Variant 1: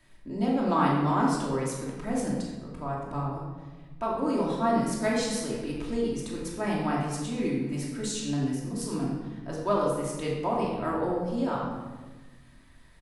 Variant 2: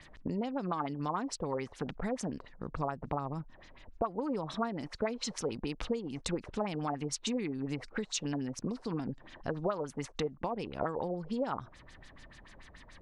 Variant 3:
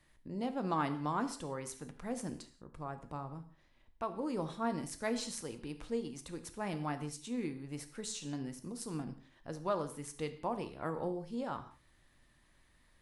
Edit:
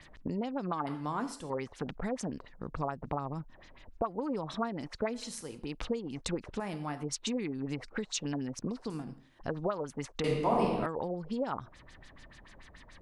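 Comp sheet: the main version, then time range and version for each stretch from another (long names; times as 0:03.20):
2
0:00.87–0:01.50: punch in from 3
0:05.20–0:05.66: punch in from 3, crossfade 0.24 s
0:06.60–0:07.03: punch in from 3
0:08.90–0:09.39: punch in from 3
0:10.24–0:10.86: punch in from 1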